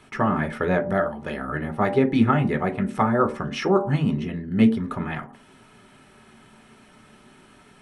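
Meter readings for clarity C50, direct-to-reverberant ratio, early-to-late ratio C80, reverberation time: 13.5 dB, 3.5 dB, 17.5 dB, non-exponential decay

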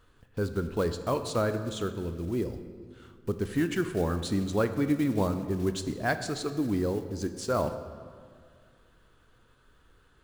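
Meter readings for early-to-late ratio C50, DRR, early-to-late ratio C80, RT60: 10.0 dB, 9.0 dB, 11.5 dB, 2.0 s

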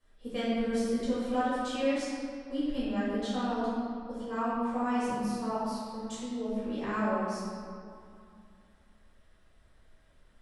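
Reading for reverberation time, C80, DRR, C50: 2.4 s, −1.5 dB, −12.0 dB, −4.0 dB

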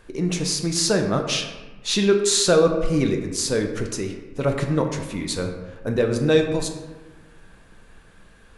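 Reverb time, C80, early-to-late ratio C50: 1.3 s, 8.5 dB, 6.5 dB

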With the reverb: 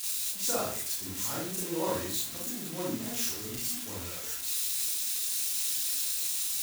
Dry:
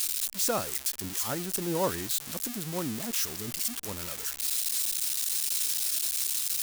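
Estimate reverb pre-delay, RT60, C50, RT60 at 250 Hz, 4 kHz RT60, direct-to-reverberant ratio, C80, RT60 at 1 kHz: 30 ms, 0.50 s, 1.0 dB, 0.55 s, 0.45 s, −6.5 dB, 6.5 dB, 0.45 s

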